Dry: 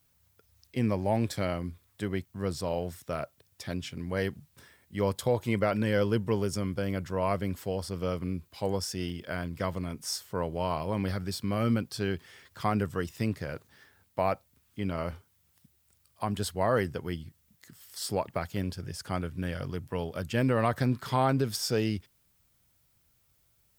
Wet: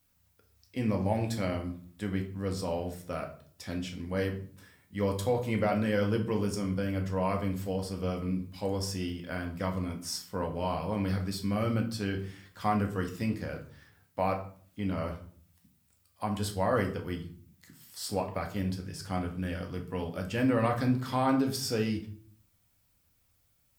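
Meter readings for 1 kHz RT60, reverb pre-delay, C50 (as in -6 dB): 0.45 s, 4 ms, 10.5 dB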